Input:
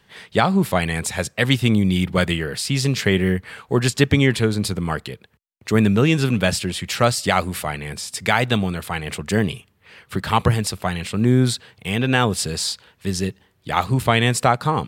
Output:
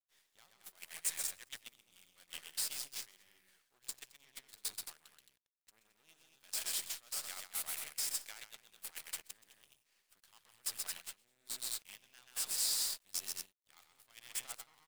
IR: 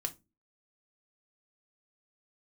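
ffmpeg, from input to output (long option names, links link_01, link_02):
-af "aeval=exprs='if(lt(val(0),0),0.251*val(0),val(0))':channel_layout=same,aecho=1:1:128.3|218.7:0.562|0.398,areverse,acompressor=threshold=-23dB:ratio=16,areverse,asoftclip=type=tanh:threshold=-18.5dB,aderivative,acrusher=bits=7:dc=4:mix=0:aa=0.000001,agate=range=-14dB:threshold=-43dB:ratio=16:detection=peak,lowshelf=frequency=270:gain=-7.5,volume=-1dB"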